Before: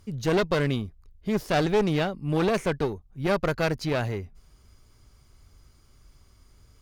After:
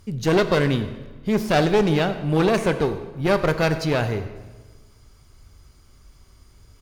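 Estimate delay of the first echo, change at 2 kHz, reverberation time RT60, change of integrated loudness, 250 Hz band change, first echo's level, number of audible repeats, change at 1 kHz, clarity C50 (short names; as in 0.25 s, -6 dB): 96 ms, +5.0 dB, 1.3 s, +5.0 dB, +5.0 dB, -19.0 dB, 1, +5.0 dB, 10.5 dB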